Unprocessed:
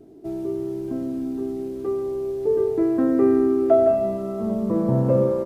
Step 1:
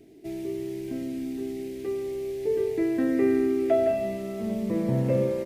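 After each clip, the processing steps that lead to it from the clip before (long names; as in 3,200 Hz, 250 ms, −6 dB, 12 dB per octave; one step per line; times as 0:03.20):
high shelf with overshoot 1,600 Hz +9 dB, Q 3
level −4.5 dB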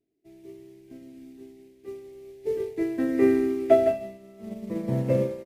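expander for the loud parts 2.5 to 1, over −41 dBFS
level +6.5 dB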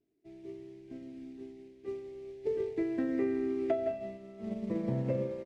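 downward compressor 5 to 1, threshold −29 dBFS, peak gain reduction 15 dB
high-frequency loss of the air 91 metres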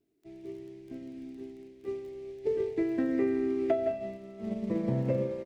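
surface crackle 13 per second −51 dBFS
level +3 dB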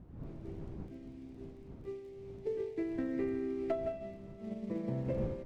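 stylus tracing distortion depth 0.051 ms
wind on the microphone 190 Hz −41 dBFS
level −7 dB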